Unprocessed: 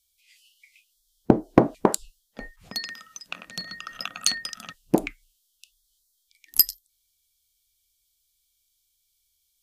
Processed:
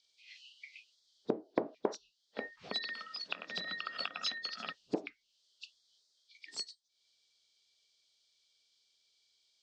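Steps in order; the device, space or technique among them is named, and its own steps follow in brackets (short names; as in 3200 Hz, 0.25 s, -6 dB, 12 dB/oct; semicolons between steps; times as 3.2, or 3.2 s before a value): hearing aid with frequency lowering (nonlinear frequency compression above 3300 Hz 1.5:1; compressor 3:1, threshold -42 dBFS, peak gain reduction 23.5 dB; speaker cabinet 250–5100 Hz, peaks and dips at 430 Hz +6 dB, 610 Hz +3 dB, 4600 Hz +3 dB); gain +4 dB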